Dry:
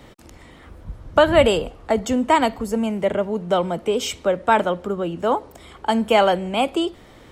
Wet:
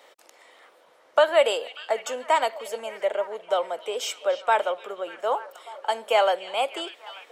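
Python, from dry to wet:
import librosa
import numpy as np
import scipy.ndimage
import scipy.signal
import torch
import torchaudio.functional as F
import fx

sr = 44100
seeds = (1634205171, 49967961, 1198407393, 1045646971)

p1 = scipy.signal.sosfilt(scipy.signal.cheby1(3, 1.0, 520.0, 'highpass', fs=sr, output='sos'), x)
p2 = p1 + fx.echo_stepped(p1, sr, ms=296, hz=3500.0, octaves=-0.7, feedback_pct=70, wet_db=-10.5, dry=0)
y = p2 * librosa.db_to_amplitude(-3.5)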